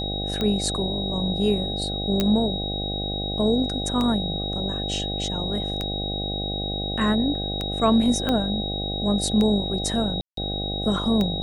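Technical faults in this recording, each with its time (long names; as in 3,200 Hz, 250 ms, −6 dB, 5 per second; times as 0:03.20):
mains buzz 50 Hz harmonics 16 −30 dBFS
scratch tick 33 1/3 rpm −13 dBFS
whistle 3,800 Hz −29 dBFS
0:02.20: click −8 dBFS
0:08.29: click −11 dBFS
0:10.21–0:10.37: drop-out 163 ms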